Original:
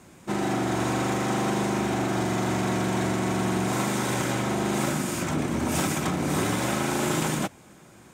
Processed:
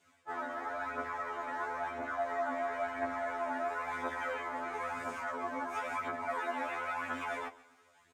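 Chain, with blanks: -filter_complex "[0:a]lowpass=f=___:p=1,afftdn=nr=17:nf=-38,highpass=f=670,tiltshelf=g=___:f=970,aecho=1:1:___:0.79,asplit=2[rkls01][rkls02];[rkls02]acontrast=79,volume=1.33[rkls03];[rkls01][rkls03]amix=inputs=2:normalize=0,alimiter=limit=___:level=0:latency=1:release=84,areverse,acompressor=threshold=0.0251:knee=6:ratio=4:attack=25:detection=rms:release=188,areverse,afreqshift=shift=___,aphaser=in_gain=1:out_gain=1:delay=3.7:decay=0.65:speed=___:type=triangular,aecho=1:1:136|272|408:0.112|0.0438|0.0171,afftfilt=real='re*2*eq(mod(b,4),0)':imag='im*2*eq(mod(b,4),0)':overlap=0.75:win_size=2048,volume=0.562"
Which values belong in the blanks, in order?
1.4k, -5.5, 6.7, 0.211, -45, 0.98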